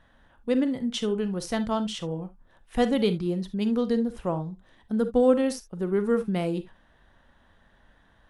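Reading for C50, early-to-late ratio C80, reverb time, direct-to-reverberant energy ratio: 14.0 dB, 33.0 dB, non-exponential decay, 11.0 dB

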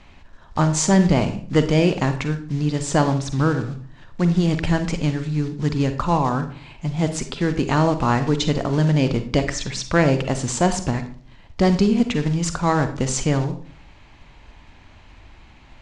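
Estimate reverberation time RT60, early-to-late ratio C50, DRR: 0.45 s, 10.0 dB, 8.5 dB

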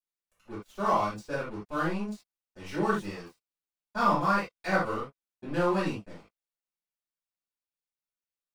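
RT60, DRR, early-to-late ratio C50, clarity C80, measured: non-exponential decay, −12.0 dB, 3.0 dB, 11.5 dB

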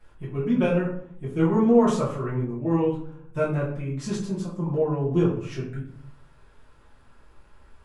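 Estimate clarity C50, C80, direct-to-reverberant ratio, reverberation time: 5.5 dB, 9.5 dB, −10.0 dB, 0.60 s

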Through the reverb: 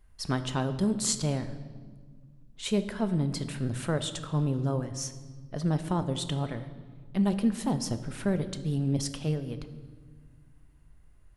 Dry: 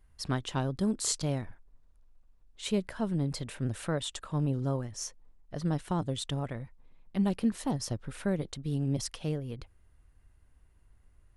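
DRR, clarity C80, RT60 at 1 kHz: 9.0 dB, 14.0 dB, 1.4 s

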